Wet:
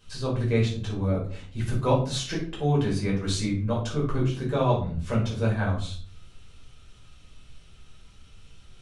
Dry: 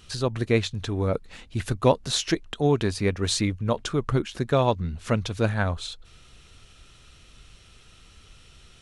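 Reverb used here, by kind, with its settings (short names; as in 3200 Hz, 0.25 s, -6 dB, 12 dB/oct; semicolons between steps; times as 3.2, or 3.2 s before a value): shoebox room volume 410 m³, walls furnished, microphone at 5.2 m; gain -12 dB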